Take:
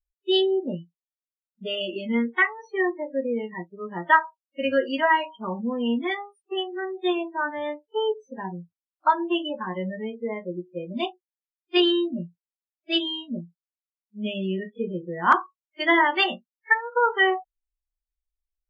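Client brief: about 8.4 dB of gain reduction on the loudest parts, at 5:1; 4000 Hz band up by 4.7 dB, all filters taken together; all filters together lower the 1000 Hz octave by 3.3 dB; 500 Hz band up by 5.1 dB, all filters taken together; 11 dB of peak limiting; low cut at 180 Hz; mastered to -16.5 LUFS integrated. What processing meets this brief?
HPF 180 Hz; bell 500 Hz +8.5 dB; bell 1000 Hz -6.5 dB; bell 4000 Hz +7.5 dB; compressor 5:1, threshold -21 dBFS; gain +14 dB; limiter -7 dBFS

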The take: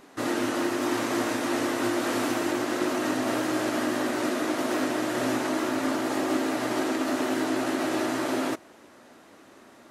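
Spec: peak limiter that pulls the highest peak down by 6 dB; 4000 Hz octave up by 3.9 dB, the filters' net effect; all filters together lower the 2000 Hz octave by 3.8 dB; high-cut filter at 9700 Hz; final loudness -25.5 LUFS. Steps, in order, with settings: LPF 9700 Hz; bell 2000 Hz -6.5 dB; bell 4000 Hz +7 dB; gain +4 dB; limiter -16.5 dBFS

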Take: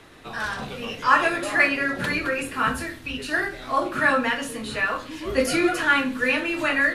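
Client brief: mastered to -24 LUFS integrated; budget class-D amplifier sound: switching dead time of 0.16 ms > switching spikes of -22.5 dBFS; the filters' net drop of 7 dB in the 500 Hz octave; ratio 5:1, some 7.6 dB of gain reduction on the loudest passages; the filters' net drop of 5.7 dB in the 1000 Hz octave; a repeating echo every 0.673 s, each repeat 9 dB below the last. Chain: bell 500 Hz -7.5 dB; bell 1000 Hz -6 dB; compressor 5:1, threshold -25 dBFS; feedback echo 0.673 s, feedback 35%, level -9 dB; switching dead time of 0.16 ms; switching spikes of -22.5 dBFS; gain +5 dB

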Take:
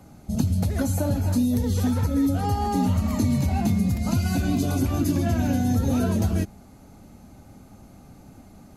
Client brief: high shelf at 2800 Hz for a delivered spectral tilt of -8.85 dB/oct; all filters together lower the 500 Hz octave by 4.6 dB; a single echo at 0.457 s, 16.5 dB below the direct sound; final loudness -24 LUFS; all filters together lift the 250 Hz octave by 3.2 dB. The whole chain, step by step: bell 250 Hz +5.5 dB; bell 500 Hz -8.5 dB; high shelf 2800 Hz +4.5 dB; echo 0.457 s -16.5 dB; gain -2.5 dB

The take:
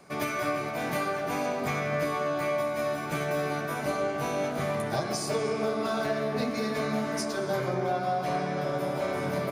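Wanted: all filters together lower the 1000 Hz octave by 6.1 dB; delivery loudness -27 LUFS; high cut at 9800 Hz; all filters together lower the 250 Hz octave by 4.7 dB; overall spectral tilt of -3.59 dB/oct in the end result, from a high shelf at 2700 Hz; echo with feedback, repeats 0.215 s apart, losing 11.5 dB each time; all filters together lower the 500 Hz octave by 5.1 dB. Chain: LPF 9800 Hz; bell 250 Hz -5 dB; bell 500 Hz -3 dB; bell 1000 Hz -8 dB; high shelf 2700 Hz +6 dB; feedback echo 0.215 s, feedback 27%, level -11.5 dB; gain +5.5 dB

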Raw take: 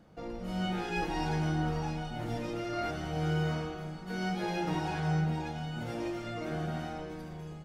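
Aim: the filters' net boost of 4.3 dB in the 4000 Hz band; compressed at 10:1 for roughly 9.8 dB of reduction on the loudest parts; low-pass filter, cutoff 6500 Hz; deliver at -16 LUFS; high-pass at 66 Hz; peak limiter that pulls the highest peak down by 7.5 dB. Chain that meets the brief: HPF 66 Hz; LPF 6500 Hz; bell 4000 Hz +6.5 dB; compressor 10:1, threshold -36 dBFS; gain +28 dB; limiter -8 dBFS

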